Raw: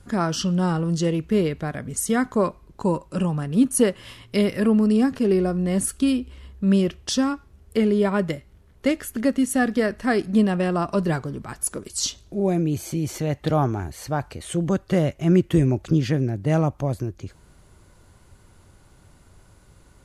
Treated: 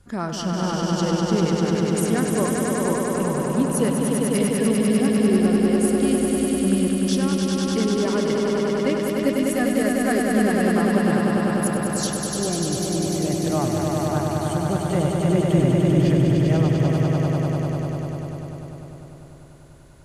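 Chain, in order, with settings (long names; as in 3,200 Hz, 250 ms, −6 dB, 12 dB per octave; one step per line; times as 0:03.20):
echo that builds up and dies away 99 ms, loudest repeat 5, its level −4 dB
level −4.5 dB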